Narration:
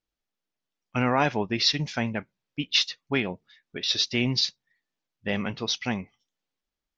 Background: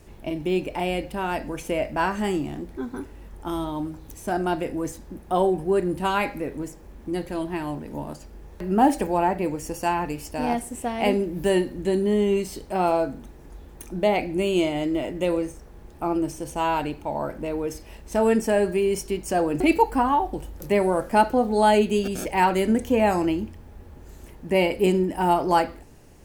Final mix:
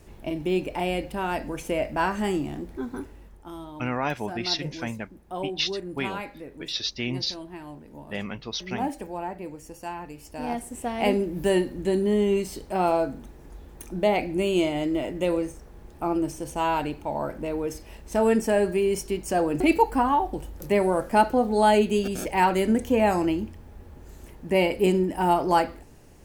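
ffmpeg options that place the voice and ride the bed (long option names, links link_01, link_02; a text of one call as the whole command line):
ffmpeg -i stem1.wav -i stem2.wav -filter_complex "[0:a]adelay=2850,volume=-4.5dB[link_01];[1:a]volume=9dB,afade=type=out:start_time=2.99:duration=0.44:silence=0.316228,afade=type=in:start_time=10.13:duration=0.88:silence=0.316228[link_02];[link_01][link_02]amix=inputs=2:normalize=0" out.wav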